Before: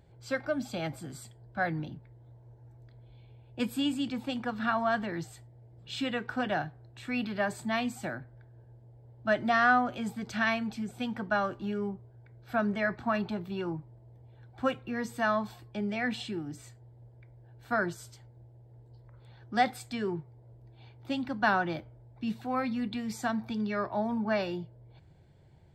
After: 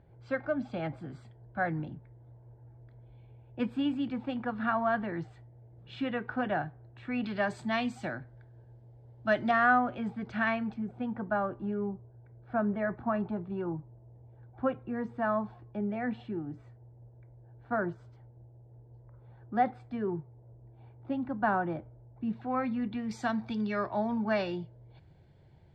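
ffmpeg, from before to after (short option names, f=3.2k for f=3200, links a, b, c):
-af "asetnsamples=n=441:p=0,asendcmd='7.24 lowpass f 4900;9.51 lowpass f 2100;10.74 lowpass f 1200;22.33 lowpass f 2000;23.11 lowpass f 4900',lowpass=2k"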